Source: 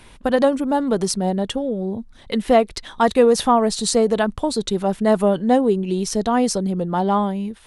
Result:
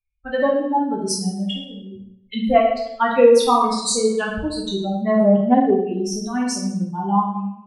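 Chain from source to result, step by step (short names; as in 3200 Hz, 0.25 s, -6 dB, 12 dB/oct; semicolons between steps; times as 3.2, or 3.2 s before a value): per-bin expansion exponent 3; reverb RT60 0.80 s, pre-delay 11 ms, DRR -3.5 dB; 5.2–7 Doppler distortion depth 0.1 ms; gain +1.5 dB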